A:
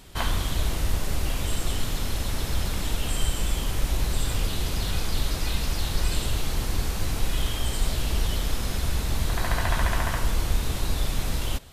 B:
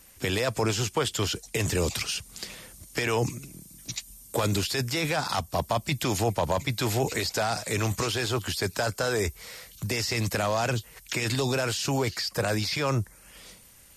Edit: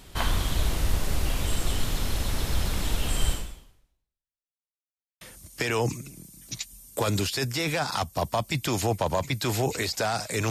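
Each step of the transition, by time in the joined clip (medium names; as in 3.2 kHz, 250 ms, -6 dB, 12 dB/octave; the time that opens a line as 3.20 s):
A
3.32–4.54 s: fade out exponential
4.54–5.21 s: mute
5.21 s: go over to B from 2.58 s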